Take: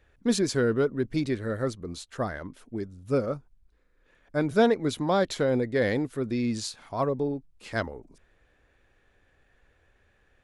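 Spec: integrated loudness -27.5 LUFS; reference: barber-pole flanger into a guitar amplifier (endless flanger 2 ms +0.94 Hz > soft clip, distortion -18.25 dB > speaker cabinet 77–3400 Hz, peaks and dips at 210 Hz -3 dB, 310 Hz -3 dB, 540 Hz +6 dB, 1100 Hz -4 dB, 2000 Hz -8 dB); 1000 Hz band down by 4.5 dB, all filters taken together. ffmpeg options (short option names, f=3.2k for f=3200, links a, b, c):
-filter_complex "[0:a]equalizer=f=1k:t=o:g=-6.5,asplit=2[a][b];[b]adelay=2,afreqshift=0.94[c];[a][c]amix=inputs=2:normalize=1,asoftclip=threshold=-20.5dB,highpass=77,equalizer=f=210:t=q:w=4:g=-3,equalizer=f=310:t=q:w=4:g=-3,equalizer=f=540:t=q:w=4:g=6,equalizer=f=1.1k:t=q:w=4:g=-4,equalizer=f=2k:t=q:w=4:g=-8,lowpass=f=3.4k:w=0.5412,lowpass=f=3.4k:w=1.3066,volume=5.5dB"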